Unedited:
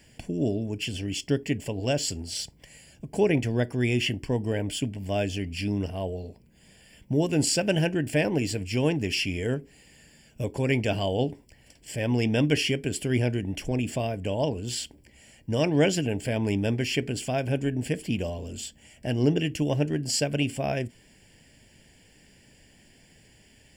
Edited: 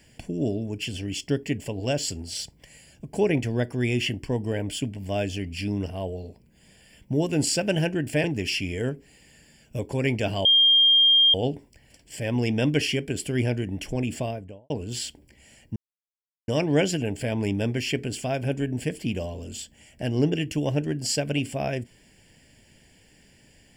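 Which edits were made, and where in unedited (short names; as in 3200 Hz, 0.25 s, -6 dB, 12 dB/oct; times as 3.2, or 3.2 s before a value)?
8.24–8.89 cut
11.1 add tone 3210 Hz -14 dBFS 0.89 s
13.92–14.46 studio fade out
15.52 insert silence 0.72 s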